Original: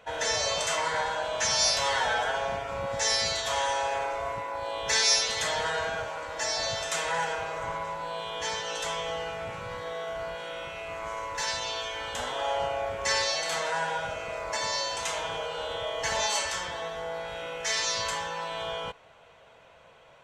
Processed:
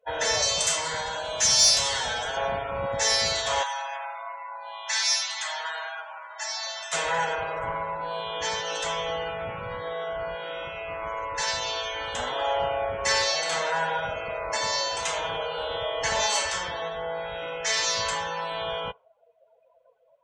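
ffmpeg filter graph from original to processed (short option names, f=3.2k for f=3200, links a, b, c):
-filter_complex "[0:a]asettb=1/sr,asplit=3[a][b][c];[a]atrim=end=0.424[d];[b]atrim=start=0.42:end=2.37,asetpts=PTS-STARTPTS,afade=t=in:d=0.004:c=qsin,afade=t=out:st=1.946:d=0.004:c=qsin,highshelf=f=4.5k:g=7.5,acrossover=split=310|3000[e][f][g];[f]acompressor=threshold=-34dB:ratio=3:attack=3.2:release=140:knee=2.83:detection=peak[h];[e][h][g]amix=inputs=3:normalize=0[i];[c]atrim=start=2.366[j];[d][i]acrossfade=d=0.004:c1=hsin:c2=qsin[k];[k][j]acrossfade=d=0.004:c1=qsin:c2=hsin,asettb=1/sr,asplit=3[l][m][n];[l]atrim=end=3.634[o];[m]atrim=start=3.63:end=6.93,asetpts=PTS-STARTPTS,afade=t=in:d=0.004:c=qsin,afade=t=out:st=3.296:d=0.004:c=qsin,highpass=f=760:w=0.5412,highpass=f=760:w=1.3066,flanger=delay=0.8:depth=1.1:regen=-78:speed=1.7:shape=sinusoidal[p];[n]atrim=start=6.926[q];[o][p]acrossfade=d=0.004:c1=hsin:c2=qsin[r];[r][q]acrossfade=d=0.004:c1=qsin:c2=hsin,afftdn=nr=31:nf=-44,acontrast=88,volume=-4dB"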